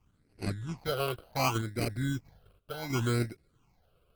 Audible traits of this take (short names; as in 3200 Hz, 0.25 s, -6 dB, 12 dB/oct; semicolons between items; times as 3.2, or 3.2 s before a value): random-step tremolo 3.1 Hz; aliases and images of a low sample rate 1800 Hz, jitter 0%; phasing stages 8, 0.68 Hz, lowest notch 250–1000 Hz; Opus